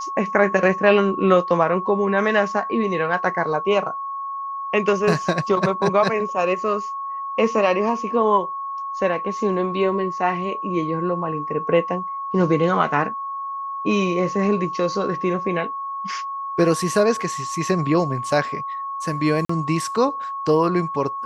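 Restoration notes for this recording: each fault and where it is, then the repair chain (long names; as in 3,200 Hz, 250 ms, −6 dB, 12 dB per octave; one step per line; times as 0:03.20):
whistle 1,100 Hz −26 dBFS
0:19.45–0:19.49: drop-out 44 ms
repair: notch filter 1,100 Hz, Q 30
repair the gap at 0:19.45, 44 ms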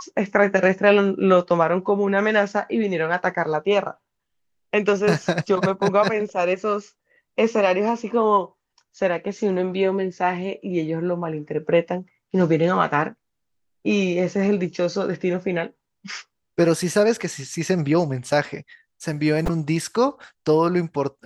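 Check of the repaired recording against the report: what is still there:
none of them is left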